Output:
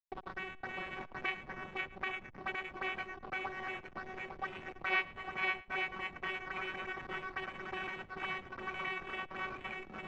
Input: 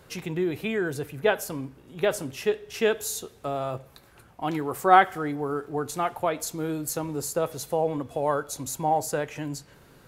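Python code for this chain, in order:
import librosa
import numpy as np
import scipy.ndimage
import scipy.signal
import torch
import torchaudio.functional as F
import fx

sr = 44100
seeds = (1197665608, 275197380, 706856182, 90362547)

y = np.r_[np.sort(x[:len(x) // 128 * 128].reshape(-1, 128), axis=1).ravel(), x[len(x) // 128 * 128:]]
y = fx.high_shelf(y, sr, hz=4200.0, db=-10.5)
y = fx.auto_wah(y, sr, base_hz=520.0, top_hz=2400.0, q=5.0, full_db=-25.0, direction='up')
y = fx.echo_swing(y, sr, ms=853, ratio=1.5, feedback_pct=43, wet_db=-3)
y = fx.pitch_keep_formants(y, sr, semitones=1.5)
y = fx.filter_lfo_notch(y, sr, shape='sine', hz=9.2, low_hz=310.0, high_hz=1700.0, q=1.4)
y = fx.backlash(y, sr, play_db=-41.5)
y = fx.spacing_loss(y, sr, db_at_10k=33)
y = y + 10.0 ** (-22.5 / 20.0) * np.pad(y, (int(111 * sr / 1000.0), 0))[:len(y)]
y = fx.band_squash(y, sr, depth_pct=40)
y = y * librosa.db_to_amplitude(9.5)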